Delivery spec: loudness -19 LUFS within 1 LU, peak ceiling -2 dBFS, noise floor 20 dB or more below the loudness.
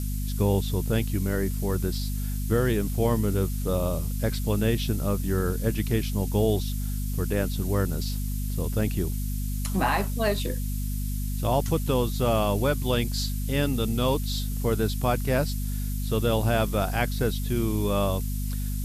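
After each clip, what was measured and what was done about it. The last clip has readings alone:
hum 50 Hz; highest harmonic 250 Hz; hum level -26 dBFS; noise floor -29 dBFS; noise floor target -47 dBFS; loudness -27.0 LUFS; peak level -11.0 dBFS; loudness target -19.0 LUFS
-> hum notches 50/100/150/200/250 Hz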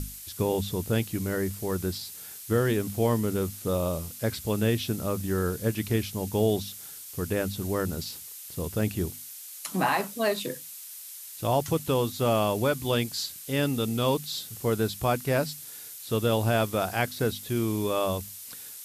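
hum not found; noise floor -43 dBFS; noise floor target -49 dBFS
-> noise print and reduce 6 dB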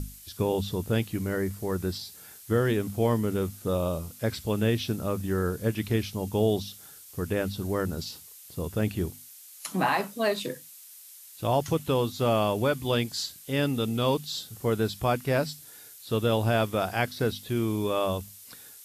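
noise floor -49 dBFS; loudness -28.5 LUFS; peak level -13.0 dBFS; loudness target -19.0 LUFS
-> trim +9.5 dB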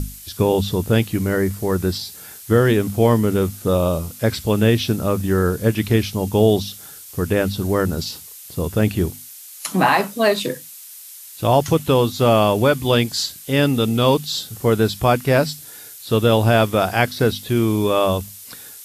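loudness -19.0 LUFS; peak level -3.5 dBFS; noise floor -39 dBFS

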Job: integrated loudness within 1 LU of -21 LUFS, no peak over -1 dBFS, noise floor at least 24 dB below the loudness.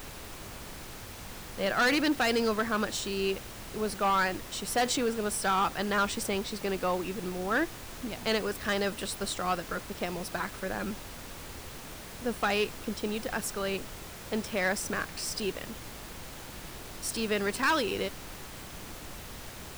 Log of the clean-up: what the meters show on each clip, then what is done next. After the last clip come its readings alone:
clipped samples 1.2%; clipping level -21.5 dBFS; noise floor -44 dBFS; noise floor target -55 dBFS; loudness -30.5 LUFS; peak level -21.5 dBFS; loudness target -21.0 LUFS
-> clip repair -21.5 dBFS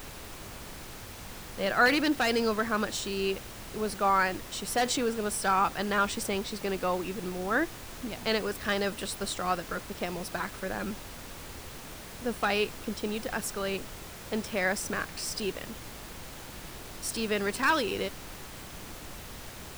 clipped samples 0.0%; noise floor -44 dBFS; noise floor target -54 dBFS
-> noise print and reduce 10 dB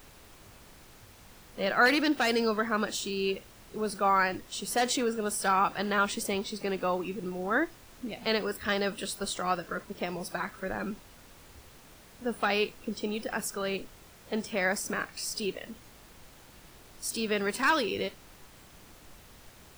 noise floor -54 dBFS; loudness -30.0 LUFS; peak level -12.0 dBFS; loudness target -21.0 LUFS
-> trim +9 dB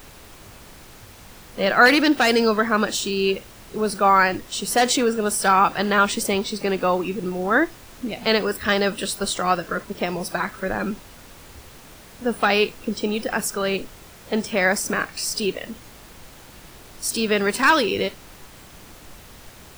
loudness -21.0 LUFS; peak level -3.0 dBFS; noise floor -45 dBFS

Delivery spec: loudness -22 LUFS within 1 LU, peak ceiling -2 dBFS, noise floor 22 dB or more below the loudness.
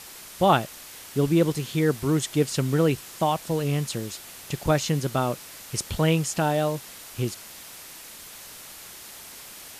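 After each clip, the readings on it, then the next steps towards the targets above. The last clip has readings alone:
noise floor -43 dBFS; noise floor target -48 dBFS; loudness -25.5 LUFS; peak level -7.0 dBFS; loudness target -22.0 LUFS
-> noise reduction 6 dB, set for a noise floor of -43 dBFS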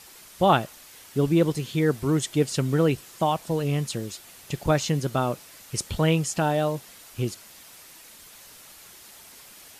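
noise floor -48 dBFS; loudness -25.5 LUFS; peak level -7.0 dBFS; loudness target -22.0 LUFS
-> trim +3.5 dB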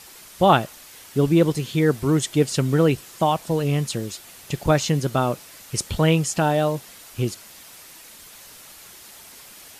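loudness -22.0 LUFS; peak level -3.5 dBFS; noise floor -45 dBFS

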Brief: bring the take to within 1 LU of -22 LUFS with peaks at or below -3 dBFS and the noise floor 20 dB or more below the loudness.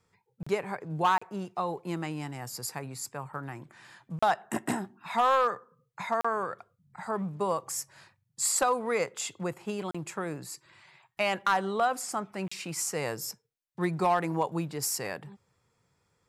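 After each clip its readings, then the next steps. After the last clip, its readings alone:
clipped samples 0.3%; clipping level -17.5 dBFS; dropouts 6; longest dropout 35 ms; loudness -31.0 LUFS; peak level -17.5 dBFS; loudness target -22.0 LUFS
-> clip repair -17.5 dBFS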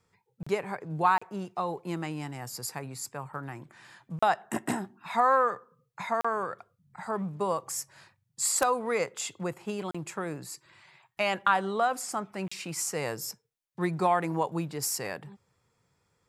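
clipped samples 0.0%; dropouts 6; longest dropout 35 ms
-> interpolate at 0.43/1.18/4.19/6.21/9.91/12.48 s, 35 ms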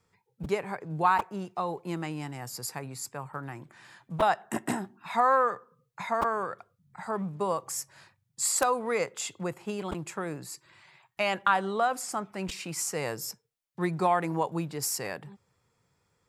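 dropouts 0; loudness -30.5 LUFS; peak level -8.5 dBFS; loudness target -22.0 LUFS
-> trim +8.5 dB; peak limiter -3 dBFS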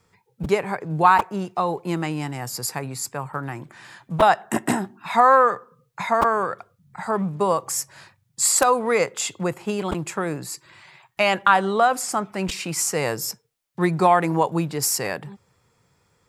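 loudness -22.0 LUFS; peak level -3.0 dBFS; noise floor -67 dBFS

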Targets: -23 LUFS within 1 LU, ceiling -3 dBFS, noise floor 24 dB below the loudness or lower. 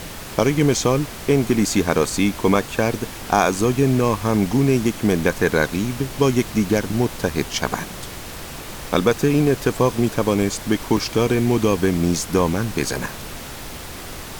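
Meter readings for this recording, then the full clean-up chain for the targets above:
dropouts 3; longest dropout 2.7 ms; noise floor -34 dBFS; noise floor target -44 dBFS; loudness -20.0 LUFS; peak level -1.0 dBFS; loudness target -23.0 LUFS
-> interpolate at 2.10/10.97/12.53 s, 2.7 ms; noise print and reduce 10 dB; trim -3 dB

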